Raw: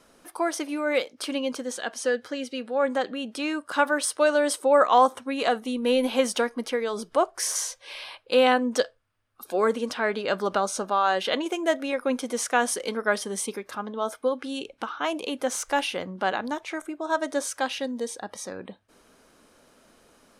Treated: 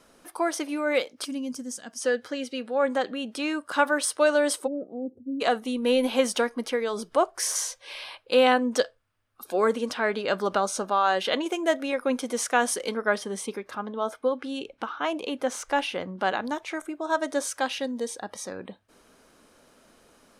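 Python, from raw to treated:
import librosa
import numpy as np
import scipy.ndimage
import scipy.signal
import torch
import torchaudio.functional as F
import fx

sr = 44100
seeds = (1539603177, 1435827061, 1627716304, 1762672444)

y = fx.spec_box(x, sr, start_s=1.25, length_s=0.77, low_hz=300.0, high_hz=4600.0, gain_db=-13)
y = fx.cheby2_lowpass(y, sr, hz=960.0, order=4, stop_db=50, at=(4.66, 5.4), fade=0.02)
y = fx.high_shelf(y, sr, hz=5300.0, db=-8.5, at=(12.94, 16.19))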